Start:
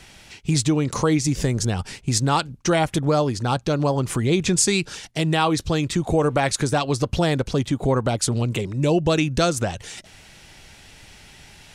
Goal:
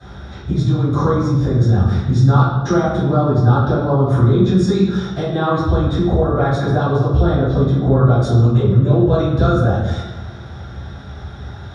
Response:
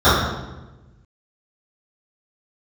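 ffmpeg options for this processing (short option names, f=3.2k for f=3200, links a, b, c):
-filter_complex "[0:a]lowpass=f=2.4k:p=1,acompressor=threshold=-28dB:ratio=6[a];[1:a]atrim=start_sample=2205[b];[a][b]afir=irnorm=-1:irlink=0,volume=-15dB"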